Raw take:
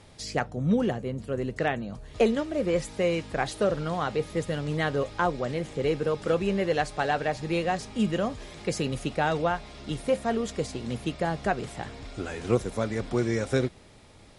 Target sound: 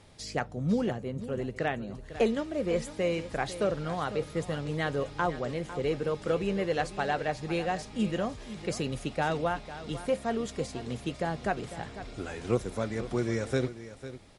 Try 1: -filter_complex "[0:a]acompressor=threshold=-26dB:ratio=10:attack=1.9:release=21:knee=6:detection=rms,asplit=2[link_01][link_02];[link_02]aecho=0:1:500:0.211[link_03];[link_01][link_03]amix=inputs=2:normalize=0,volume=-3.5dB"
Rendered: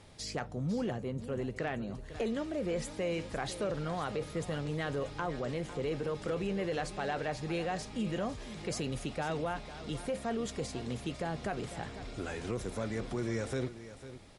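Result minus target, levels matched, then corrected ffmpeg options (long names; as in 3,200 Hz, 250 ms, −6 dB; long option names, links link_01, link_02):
downward compressor: peak gain reduction +11 dB
-filter_complex "[0:a]asplit=2[link_01][link_02];[link_02]aecho=0:1:500:0.211[link_03];[link_01][link_03]amix=inputs=2:normalize=0,volume=-3.5dB"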